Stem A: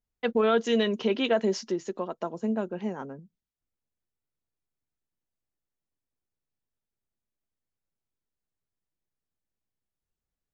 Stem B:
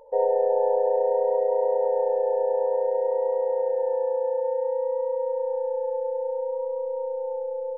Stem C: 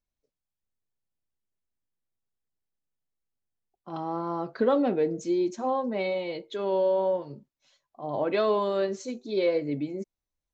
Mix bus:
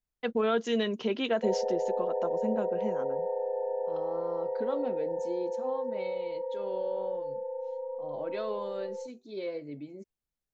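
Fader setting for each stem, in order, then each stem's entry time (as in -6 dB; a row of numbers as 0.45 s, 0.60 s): -4.0 dB, -8.5 dB, -11.0 dB; 0.00 s, 1.30 s, 0.00 s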